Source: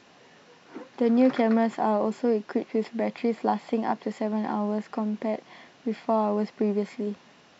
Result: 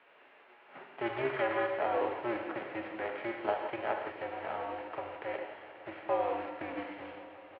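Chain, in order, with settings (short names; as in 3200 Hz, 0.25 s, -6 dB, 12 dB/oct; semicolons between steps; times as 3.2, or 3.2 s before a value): spectral whitening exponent 0.6; non-linear reverb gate 0.2 s flat, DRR 3 dB; harmoniser -5 st -8 dB; on a send: multi-head echo 0.179 s, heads second and third, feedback 75%, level -18.5 dB; on the sum: mistuned SSB -120 Hz 510–2900 Hz; gain -5 dB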